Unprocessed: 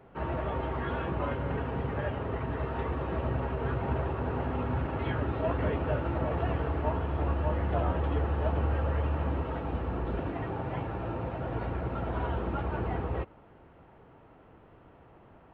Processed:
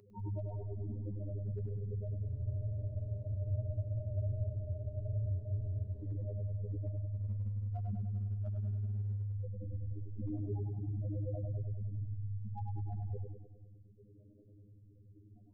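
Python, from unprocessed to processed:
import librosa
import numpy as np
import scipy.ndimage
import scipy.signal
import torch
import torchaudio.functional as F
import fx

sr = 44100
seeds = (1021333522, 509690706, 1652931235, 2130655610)

p1 = fx.high_shelf(x, sr, hz=2100.0, db=-10.0)
p2 = fx.spec_topn(p1, sr, count=2)
p3 = fx.over_compress(p2, sr, threshold_db=-42.0, ratio=-1.0)
p4 = p2 + (p3 * 10.0 ** (0.5 / 20.0))
p5 = np.clip(10.0 ** (26.5 / 20.0) * p4, -1.0, 1.0) / 10.0 ** (26.5 / 20.0)
p6 = fx.robotise(p5, sr, hz=102.0)
p7 = fx.peak_eq(p6, sr, hz=240.0, db=11.0, octaves=0.22)
p8 = p7 + fx.echo_feedback(p7, sr, ms=100, feedback_pct=56, wet_db=-5.0, dry=0)
p9 = fx.spec_freeze(p8, sr, seeds[0], at_s=2.28, hold_s=3.74)
p10 = fx.notch_cascade(p9, sr, direction='rising', hz=0.27)
y = p10 * 10.0 ** (-2.5 / 20.0)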